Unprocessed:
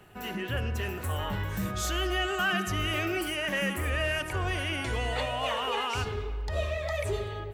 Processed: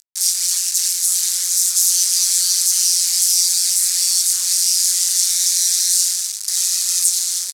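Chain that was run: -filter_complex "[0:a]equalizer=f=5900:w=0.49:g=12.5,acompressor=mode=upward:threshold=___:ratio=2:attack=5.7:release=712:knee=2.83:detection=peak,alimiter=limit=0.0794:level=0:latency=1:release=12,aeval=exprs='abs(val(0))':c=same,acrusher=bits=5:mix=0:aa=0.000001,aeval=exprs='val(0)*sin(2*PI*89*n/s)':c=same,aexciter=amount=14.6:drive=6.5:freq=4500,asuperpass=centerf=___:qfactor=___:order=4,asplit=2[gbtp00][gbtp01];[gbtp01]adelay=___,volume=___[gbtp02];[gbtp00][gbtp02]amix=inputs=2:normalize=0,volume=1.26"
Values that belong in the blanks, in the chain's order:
0.0126, 4600, 0.6, 20, 0.224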